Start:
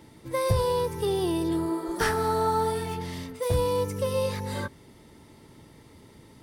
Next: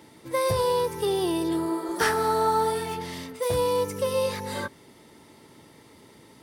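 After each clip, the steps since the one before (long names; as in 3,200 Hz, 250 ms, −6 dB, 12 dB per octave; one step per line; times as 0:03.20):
high-pass filter 280 Hz 6 dB per octave
level +3 dB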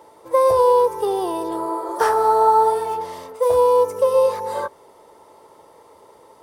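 octave-band graphic EQ 125/250/500/1,000/2,000/4,000 Hz −9/−10/+11/+11/−6/−4 dB
level −1 dB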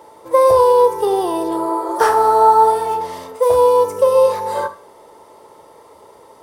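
four-comb reverb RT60 0.38 s, combs from 27 ms, DRR 10.5 dB
level +4 dB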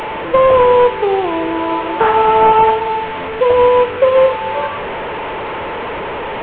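linear delta modulator 16 kbit/s, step −18.5 dBFS
level +2 dB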